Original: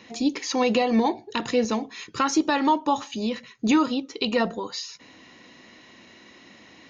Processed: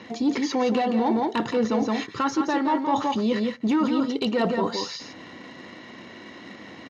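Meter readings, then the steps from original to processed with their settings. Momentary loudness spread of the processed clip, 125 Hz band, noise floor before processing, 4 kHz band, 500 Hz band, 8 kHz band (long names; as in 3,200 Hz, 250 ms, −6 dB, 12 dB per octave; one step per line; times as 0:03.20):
19 LU, +3.5 dB, −51 dBFS, −2.5 dB, +0.5 dB, can't be measured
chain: in parallel at −11 dB: bit reduction 7 bits
on the sum: low-pass filter 6,200 Hz 12 dB per octave
soft clipping −14 dBFS, distortion −17 dB
single-tap delay 170 ms −7 dB
reversed playback
downward compressor 5 to 1, threshold −29 dBFS, peak gain reduction 11.5 dB
reversed playback
high-pass filter 77 Hz
high-shelf EQ 2,800 Hz −9 dB
notch filter 2,500 Hz, Q 12
level +8.5 dB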